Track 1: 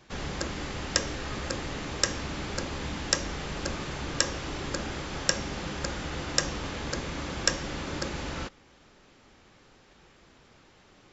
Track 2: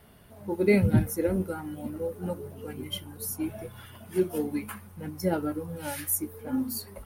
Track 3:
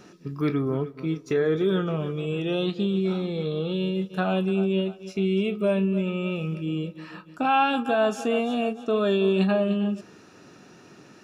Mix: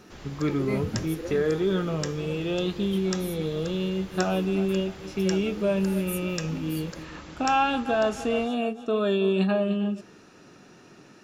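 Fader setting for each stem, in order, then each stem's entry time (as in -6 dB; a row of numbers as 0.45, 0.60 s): -9.5, -9.0, -1.5 dB; 0.00, 0.00, 0.00 s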